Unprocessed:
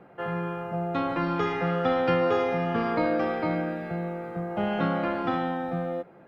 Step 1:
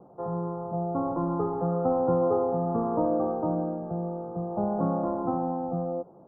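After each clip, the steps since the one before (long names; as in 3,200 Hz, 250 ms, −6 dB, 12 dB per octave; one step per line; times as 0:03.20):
Butterworth low-pass 1,100 Hz 48 dB per octave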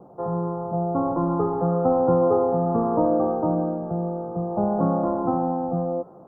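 delay with a high-pass on its return 342 ms, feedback 52%, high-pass 1,400 Hz, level −16 dB
level +5 dB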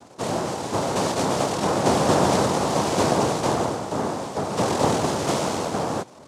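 cochlear-implant simulation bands 2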